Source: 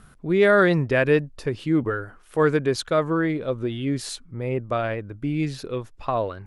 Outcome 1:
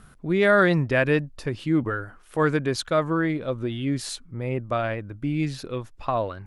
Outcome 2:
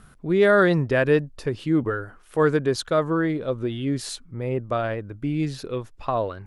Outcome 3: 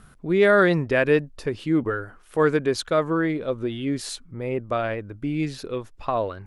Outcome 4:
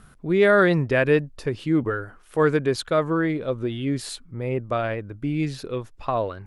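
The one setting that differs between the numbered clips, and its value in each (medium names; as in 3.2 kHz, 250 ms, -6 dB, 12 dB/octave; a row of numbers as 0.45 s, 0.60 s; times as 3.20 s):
dynamic bell, frequency: 430 Hz, 2.3 kHz, 130 Hz, 6 kHz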